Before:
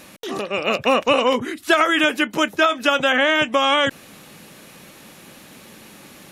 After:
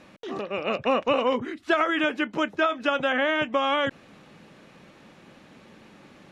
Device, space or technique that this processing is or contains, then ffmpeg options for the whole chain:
through cloth: -af "lowpass=6.7k,highshelf=f=3.5k:g=-12,volume=-5dB"

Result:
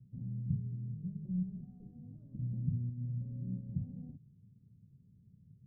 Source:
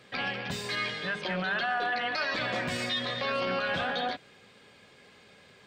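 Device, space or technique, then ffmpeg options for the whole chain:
the neighbour's flat through the wall: -af "lowpass=f=170:w=0.5412,lowpass=f=170:w=1.3066,equalizer=f=130:t=o:w=0.88:g=7,volume=3dB"

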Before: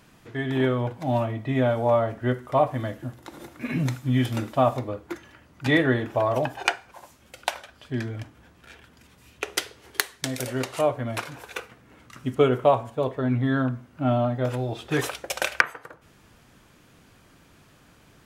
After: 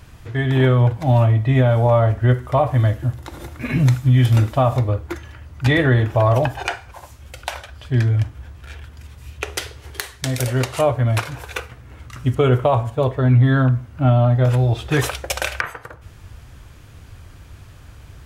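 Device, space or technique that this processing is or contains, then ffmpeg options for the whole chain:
car stereo with a boomy subwoofer: -af "lowshelf=f=130:t=q:w=1.5:g=13.5,alimiter=limit=-13.5dB:level=0:latency=1:release=42,volume=6.5dB"

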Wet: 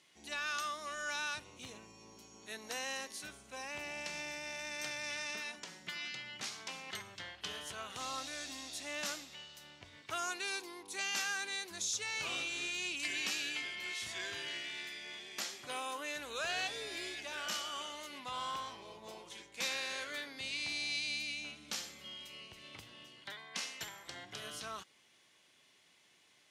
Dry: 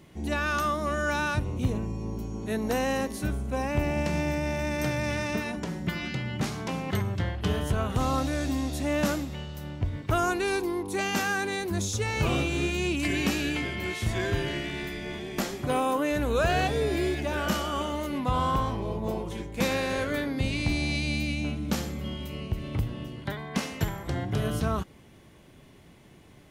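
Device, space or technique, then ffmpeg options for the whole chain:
piezo pickup straight into a mixer: -af "lowpass=5.4k,aderivative,volume=4dB"

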